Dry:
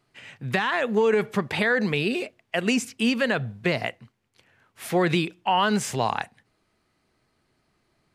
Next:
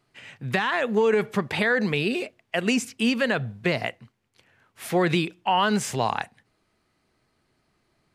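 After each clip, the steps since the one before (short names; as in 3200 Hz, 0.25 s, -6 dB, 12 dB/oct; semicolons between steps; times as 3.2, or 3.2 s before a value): nothing audible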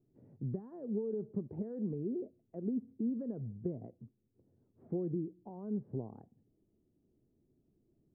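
compressor 3:1, threshold -33 dBFS, peak gain reduction 12 dB; ladder low-pass 440 Hz, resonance 30%; gain +3.5 dB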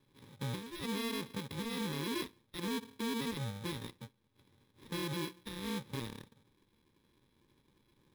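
FFT order left unsorted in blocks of 64 samples; limiter -34.5 dBFS, peak gain reduction 9 dB; sample-and-hold 6×; gain +3 dB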